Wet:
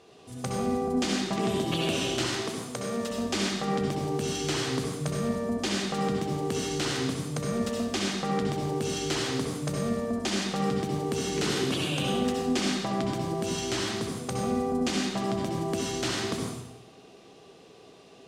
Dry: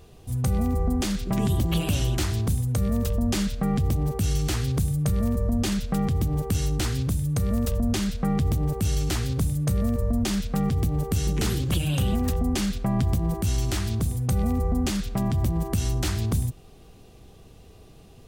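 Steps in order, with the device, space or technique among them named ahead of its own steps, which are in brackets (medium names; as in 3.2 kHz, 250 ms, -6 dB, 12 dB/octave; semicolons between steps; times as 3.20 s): 2.27–3.11 s: high-pass 250 Hz 6 dB/octave; supermarket ceiling speaker (band-pass 290–6700 Hz; reverberation RT60 0.90 s, pre-delay 60 ms, DRR -1 dB)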